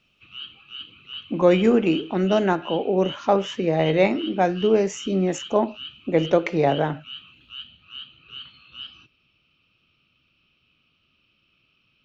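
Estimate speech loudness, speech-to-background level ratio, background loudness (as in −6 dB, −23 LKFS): −21.5 LKFS, 17.0 dB, −38.5 LKFS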